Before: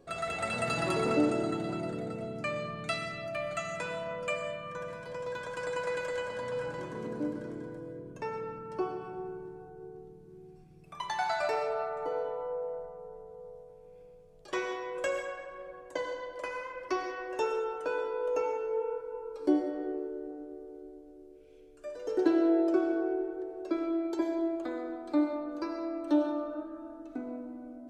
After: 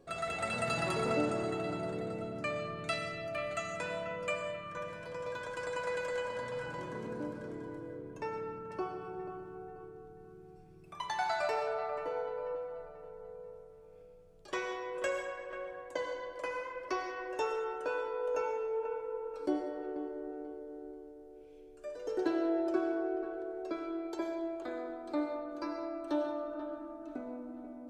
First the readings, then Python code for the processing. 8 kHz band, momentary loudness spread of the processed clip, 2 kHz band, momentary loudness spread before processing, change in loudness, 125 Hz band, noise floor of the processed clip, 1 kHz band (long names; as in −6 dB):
−2.0 dB, 16 LU, −1.5 dB, 17 LU, −4.0 dB, −2.5 dB, −54 dBFS, −2.0 dB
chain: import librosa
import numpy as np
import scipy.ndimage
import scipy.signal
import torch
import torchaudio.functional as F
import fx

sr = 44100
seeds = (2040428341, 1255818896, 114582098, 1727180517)

y = fx.dynamic_eq(x, sr, hz=300.0, q=1.9, threshold_db=-41.0, ratio=4.0, max_db=-6)
y = fx.echo_wet_lowpass(y, sr, ms=487, feedback_pct=35, hz=2500.0, wet_db=-10.0)
y = y * 10.0 ** (-2.0 / 20.0)